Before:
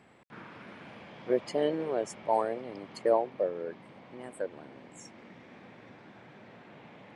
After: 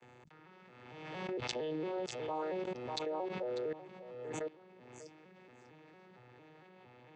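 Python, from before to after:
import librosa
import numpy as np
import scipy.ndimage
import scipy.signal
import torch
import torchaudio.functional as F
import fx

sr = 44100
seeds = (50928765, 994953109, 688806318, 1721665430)

y = fx.vocoder_arp(x, sr, chord='major triad', root=47, every_ms=228)
y = fx.tilt_eq(y, sr, slope=2.5)
y = y + 0.4 * np.pad(y, (int(2.3 * sr / 1000.0), 0))[:len(y)]
y = fx.dynamic_eq(y, sr, hz=3800.0, q=1.0, threshold_db=-58.0, ratio=4.0, max_db=7)
y = fx.level_steps(y, sr, step_db=22)
y = y + 10.0 ** (-14.0 / 20.0) * np.pad(y, (int(595 * sr / 1000.0), 0))[:len(y)]
y = fx.pre_swell(y, sr, db_per_s=36.0)
y = y * librosa.db_to_amplitude(6.5)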